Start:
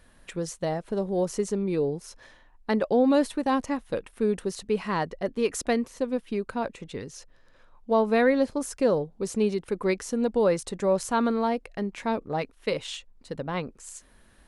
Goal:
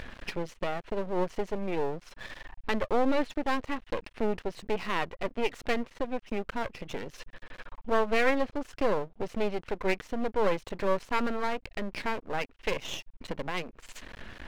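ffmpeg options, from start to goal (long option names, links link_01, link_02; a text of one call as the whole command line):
ffmpeg -i in.wav -af "lowpass=frequency=2700:width_type=q:width=1.8,aeval=exprs='max(val(0),0)':channel_layout=same,acompressor=mode=upward:threshold=-27dB:ratio=2.5" out.wav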